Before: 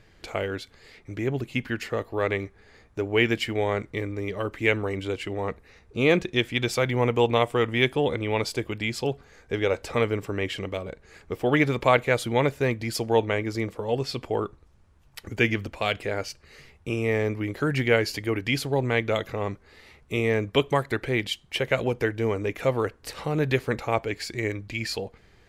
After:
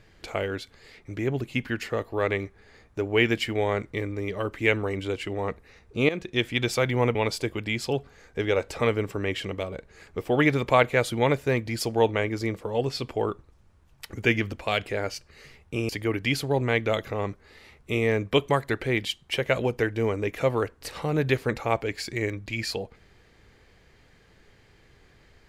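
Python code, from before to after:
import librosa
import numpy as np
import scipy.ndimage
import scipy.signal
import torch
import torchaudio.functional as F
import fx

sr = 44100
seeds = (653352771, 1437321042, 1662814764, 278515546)

y = fx.edit(x, sr, fx.fade_in_from(start_s=6.09, length_s=0.36, floor_db=-16.0),
    fx.cut(start_s=7.15, length_s=1.14),
    fx.cut(start_s=17.03, length_s=1.08), tone=tone)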